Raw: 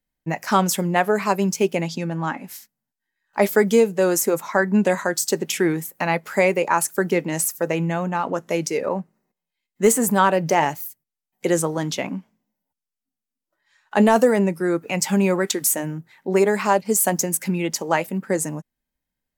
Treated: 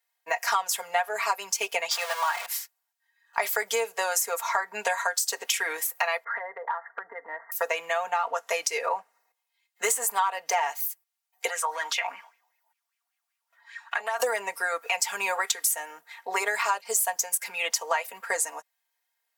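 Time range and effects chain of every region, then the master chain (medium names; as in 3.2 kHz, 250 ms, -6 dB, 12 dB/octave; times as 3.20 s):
1.91–2.46 s: jump at every zero crossing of -27.5 dBFS + high-pass 530 Hz 24 dB/octave + upward compressor, threshold -30 dBFS
6.24–7.52 s: brick-wall FIR low-pass 2.1 kHz + compression 12:1, threshold -31 dBFS
11.48–14.20 s: high-pass 330 Hz 6 dB/octave + compression 5:1, threshold -33 dBFS + sweeping bell 5.1 Hz 810–2500 Hz +15 dB
whole clip: high-pass 690 Hz 24 dB/octave; comb 4.3 ms, depth 94%; compression 5:1, threshold -29 dBFS; trim +5 dB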